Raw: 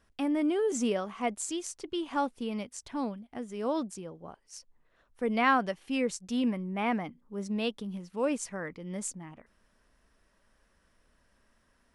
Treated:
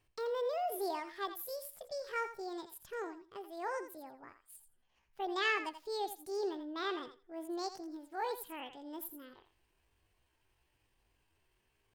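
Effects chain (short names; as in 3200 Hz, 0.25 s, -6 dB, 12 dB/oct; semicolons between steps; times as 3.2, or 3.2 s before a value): pitch shift +8.5 st; thinning echo 84 ms, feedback 16%, high-pass 530 Hz, level -10 dB; gain -8 dB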